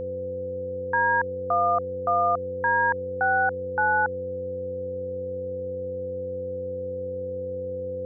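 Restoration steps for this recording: de-hum 94.1 Hz, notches 5; band-stop 510 Hz, Q 30

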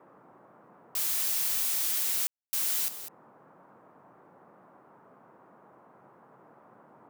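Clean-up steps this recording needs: room tone fill 2.27–2.53 s; noise print and reduce 20 dB; inverse comb 201 ms -12 dB

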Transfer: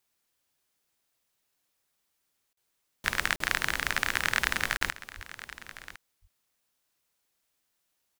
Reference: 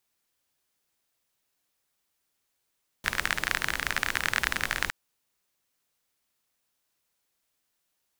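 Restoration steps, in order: de-plosive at 5.15 s; interpolate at 2.53/3.36/4.77 s, 43 ms; inverse comb 1057 ms -16 dB

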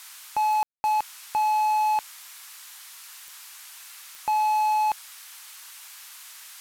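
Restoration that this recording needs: de-click; room tone fill 0.63–0.84 s; noise print and reduce 27 dB

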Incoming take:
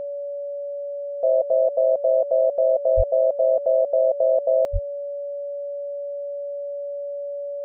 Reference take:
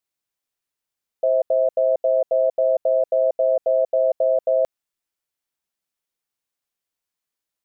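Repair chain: band-stop 570 Hz, Q 30; 2.96–3.08 s: high-pass 140 Hz 24 dB/octave; 4.72–4.84 s: high-pass 140 Hz 24 dB/octave

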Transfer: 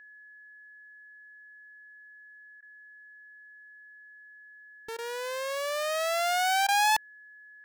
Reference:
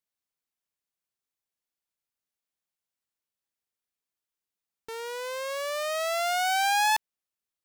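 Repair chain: band-stop 1.7 kHz, Q 30; interpolate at 2.61/4.97/6.67 s, 14 ms

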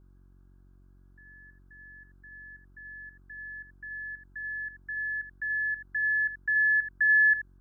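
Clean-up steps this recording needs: de-hum 46.3 Hz, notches 8; expander -49 dBFS, range -21 dB; inverse comb 82 ms -10.5 dB

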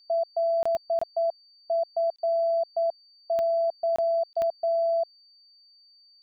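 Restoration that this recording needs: de-click; band-stop 4.6 kHz, Q 30; interpolate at 0.63/0.99/2.16/3.96/4.33 s, 25 ms

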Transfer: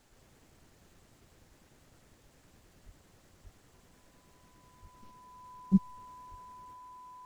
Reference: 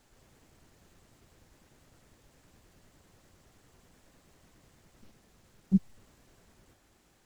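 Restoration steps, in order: band-stop 1 kHz, Q 30; de-plosive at 2.85/3.43/4.81/6.30 s

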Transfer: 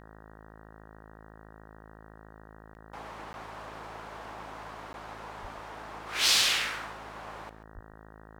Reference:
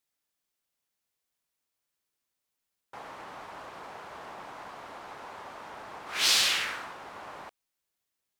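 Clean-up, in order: de-hum 53.8 Hz, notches 35; 5.41–5.53 s: high-pass 140 Hz 24 dB/octave; 7.74–7.86 s: high-pass 140 Hz 24 dB/octave; interpolate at 2.74/3.33/4.93 s, 11 ms; inverse comb 136 ms -14.5 dB

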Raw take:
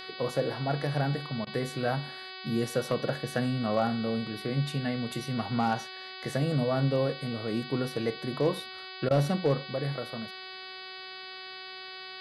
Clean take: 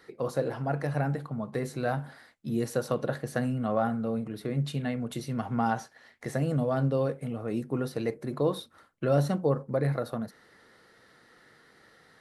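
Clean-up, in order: clip repair -17 dBFS; de-hum 375.5 Hz, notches 13; interpolate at 1.45/9.09 s, 16 ms; gain correction +5 dB, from 9.67 s

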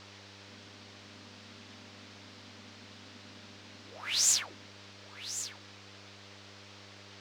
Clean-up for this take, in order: de-hum 99.9 Hz, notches 6; noise print and reduce 30 dB; inverse comb 1098 ms -12 dB

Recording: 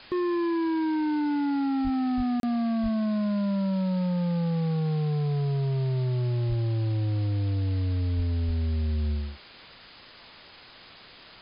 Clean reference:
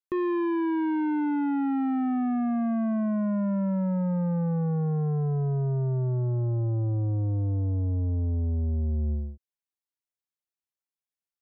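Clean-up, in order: de-plosive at 1.83/2.16/2.82/6.48/8.16/8.46 s; interpolate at 2.40 s, 32 ms; noise print and reduce 30 dB

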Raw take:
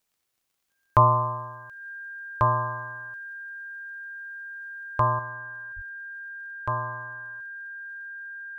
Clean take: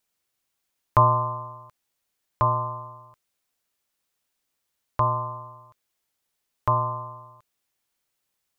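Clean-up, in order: de-click; band-stop 1.6 kHz, Q 30; 5.75–5.87 s: high-pass 140 Hz 24 dB/octave; trim 0 dB, from 5.19 s +6 dB

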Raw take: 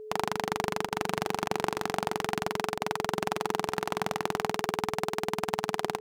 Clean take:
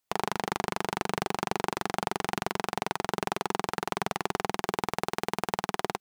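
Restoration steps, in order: band-stop 430 Hz, Q 30; interpolate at 0.89/1.48/2.78 s, 22 ms; inverse comb 448 ms -22.5 dB

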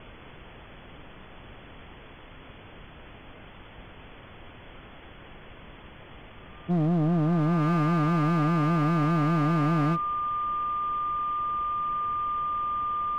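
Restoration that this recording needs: clip repair -21 dBFS; band-stop 1.2 kHz, Q 30; noise print and reduce 26 dB

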